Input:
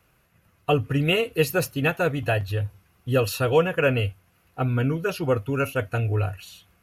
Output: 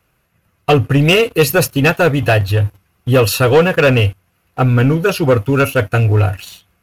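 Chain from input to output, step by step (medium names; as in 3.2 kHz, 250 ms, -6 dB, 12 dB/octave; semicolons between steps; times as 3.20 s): waveshaping leveller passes 2; trim +5 dB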